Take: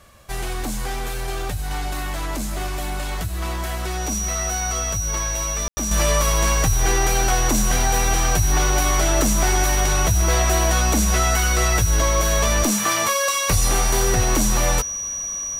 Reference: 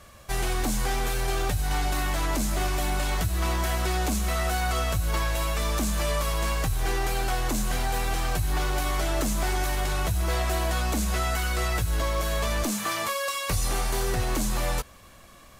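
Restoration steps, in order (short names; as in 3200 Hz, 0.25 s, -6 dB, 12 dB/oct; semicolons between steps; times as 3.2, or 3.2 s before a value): notch 5800 Hz, Q 30; room tone fill 5.68–5.77; gain 0 dB, from 5.91 s -7.5 dB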